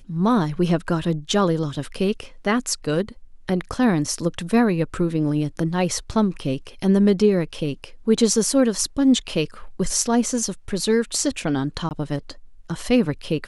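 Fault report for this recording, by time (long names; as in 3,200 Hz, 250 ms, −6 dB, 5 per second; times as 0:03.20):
0:11.89–0:11.91: drop-out 19 ms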